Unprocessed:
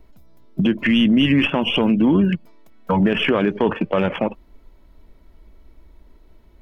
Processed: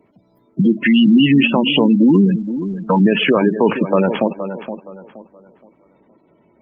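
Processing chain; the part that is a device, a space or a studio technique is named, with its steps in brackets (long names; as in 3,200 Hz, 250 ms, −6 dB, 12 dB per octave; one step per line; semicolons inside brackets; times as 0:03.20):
tape delay 471 ms, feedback 33%, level −9 dB, low-pass 2,600 Hz
noise-suppressed video call (high-pass filter 130 Hz 24 dB per octave; gate on every frequency bin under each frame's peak −20 dB strong; level +4.5 dB; Opus 24 kbit/s 48,000 Hz)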